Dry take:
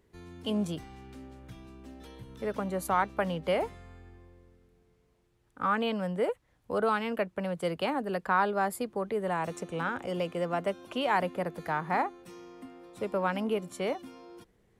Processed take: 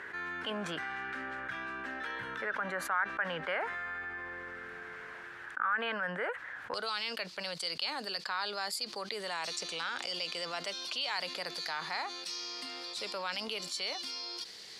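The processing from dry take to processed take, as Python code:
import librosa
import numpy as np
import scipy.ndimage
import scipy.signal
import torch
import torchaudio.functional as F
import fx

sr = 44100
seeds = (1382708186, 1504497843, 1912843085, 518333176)

y = fx.bandpass_q(x, sr, hz=fx.steps((0.0, 1600.0), (6.74, 4600.0)), q=5.9)
y = fx.env_flatten(y, sr, amount_pct=70)
y = y * 10.0 ** (4.0 / 20.0)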